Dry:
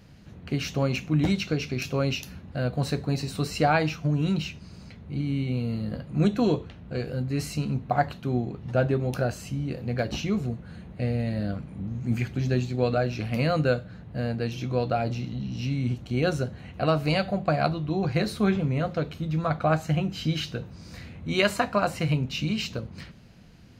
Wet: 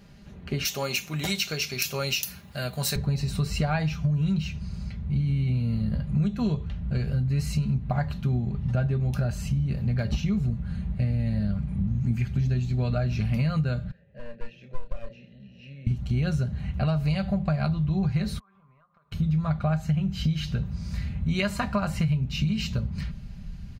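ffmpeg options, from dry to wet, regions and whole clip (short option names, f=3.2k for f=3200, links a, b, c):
-filter_complex "[0:a]asettb=1/sr,asplit=3[a][b][c];[a]atrim=end=0.654[d];[b]atrim=start=0.65:end=2.96,asetpts=PTS-STARTPTS,afade=t=in:d=0.004:c=qsin,afade=t=out:st=2.306:d=0.004:c=qsin,highpass=57,aemphasis=mode=production:type=riaa[e];[c]atrim=start=2.956[f];[d][e]acrossfade=d=0.004:c1=hsin:c2=qsin[g];[g][f]acrossfade=d=0.004:c1=qsin:c2=hsin,asettb=1/sr,asplit=3[h][i][j];[h]atrim=end=13.914[k];[i]atrim=start=13.91:end=15.87,asetpts=PTS-STARTPTS,afade=t=in:d=0.004:c=qsin,afade=t=out:st=1.956:d=0.004:c=qsin,asplit=3[l][m][n];[l]bandpass=f=530:t=q:w=8,volume=0dB[o];[m]bandpass=f=1.84k:t=q:w=8,volume=-6dB[p];[n]bandpass=f=2.48k:t=q:w=8,volume=-9dB[q];[o][p][q]amix=inputs=3:normalize=0,aeval=exprs='clip(val(0),-1,0.0112)':c=same,asplit=2[r][s];[s]adelay=29,volume=-9dB[t];[r][t]amix=inputs=2:normalize=0,atrim=end_sample=86436[u];[j]atrim=start=15.866[v];[k][u]acrossfade=d=0.004:c1=hsin:c2=qsin[w];[w][v]acrossfade=d=0.004:c1=qsin:c2=hsin,asettb=1/sr,asplit=3[x][y][z];[x]atrim=end=18.394[aa];[y]atrim=start=18.39:end=19.12,asetpts=PTS-STARTPTS,afade=t=in:d=0.004:c=qsin,afade=t=out:st=0.726:d=0.004:c=qsin,bandpass=f=1.1k:t=q:w=13,acompressor=threshold=-58dB:ratio=16:attack=3.2:release=140:knee=1:detection=peak[ab];[z]atrim=start=19.116[ac];[aa][ab]acrossfade=d=0.004:c1=hsin:c2=qsin[ad];[ad][ac]acrossfade=d=0.004:c1=qsin:c2=hsin,aecho=1:1:5:0.51,asubboost=boost=12:cutoff=100,acompressor=threshold=-22dB:ratio=6"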